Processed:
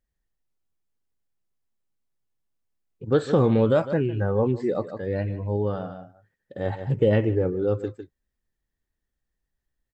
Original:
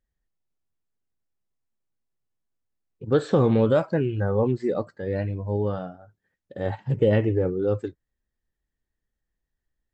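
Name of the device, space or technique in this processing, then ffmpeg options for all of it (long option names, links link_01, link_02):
ducked delay: -filter_complex "[0:a]asplit=3[link_01][link_02][link_03];[link_02]adelay=153,volume=-8dB[link_04];[link_03]apad=whole_len=444796[link_05];[link_04][link_05]sidechaincompress=threshold=-33dB:ratio=8:attack=12:release=133[link_06];[link_01][link_06]amix=inputs=2:normalize=0"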